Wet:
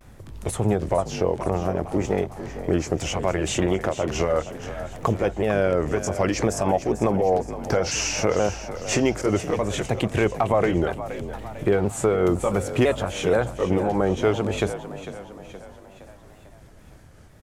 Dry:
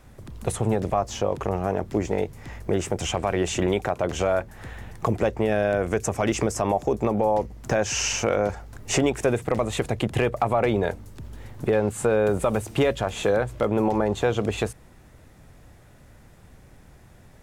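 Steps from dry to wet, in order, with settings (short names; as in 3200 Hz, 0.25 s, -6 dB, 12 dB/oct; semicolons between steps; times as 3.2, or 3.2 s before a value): repeated pitch sweeps -2.5 st, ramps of 0.494 s; on a send: frequency-shifting echo 0.46 s, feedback 51%, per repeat +46 Hz, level -12.5 dB; on the sum: vibrato 0.63 Hz 58 cents; gain +2 dB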